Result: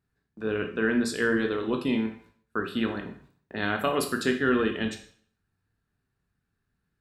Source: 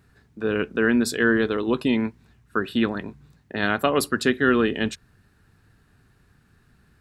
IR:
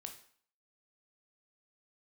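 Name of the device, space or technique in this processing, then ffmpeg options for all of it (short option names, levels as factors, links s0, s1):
bathroom: -filter_complex "[0:a]agate=range=0.178:threshold=0.00316:ratio=16:detection=peak[s0];[1:a]atrim=start_sample=2205[s1];[s0][s1]afir=irnorm=-1:irlink=0,asettb=1/sr,asplit=3[s2][s3][s4];[s2]atrim=end=0.604[s5];[s3]atrim=start=0.6:end=1.22,asetpts=PTS-STARTPTS,afade=t=in:d=0.004:c=qsin,afade=t=out:st=0.616:d=0.004:c=qsin,lowpass=10000[s6];[s4]atrim=start=1.216[s7];[s5][s6]acrossfade=d=0.004:c1=hsin:c2=qsin[s8];[s8][s7]acrossfade=d=0.004:c1=qsin:c2=hsin"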